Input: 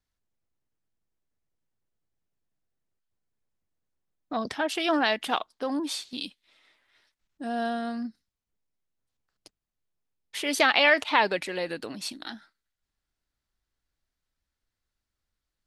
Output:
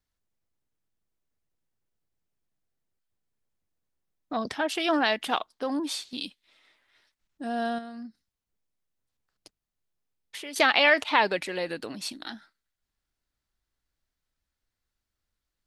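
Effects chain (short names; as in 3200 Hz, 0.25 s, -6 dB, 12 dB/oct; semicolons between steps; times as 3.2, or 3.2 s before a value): 7.78–10.56 compressor 5:1, threshold -38 dBFS, peak gain reduction 13 dB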